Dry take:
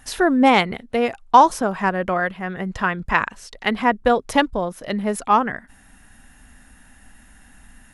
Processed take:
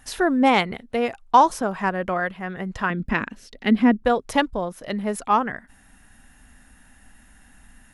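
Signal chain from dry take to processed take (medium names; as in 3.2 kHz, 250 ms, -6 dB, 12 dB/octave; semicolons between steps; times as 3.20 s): 2.90–4.03 s: graphic EQ 250/1000/8000 Hz +12/-8/-7 dB; trim -3 dB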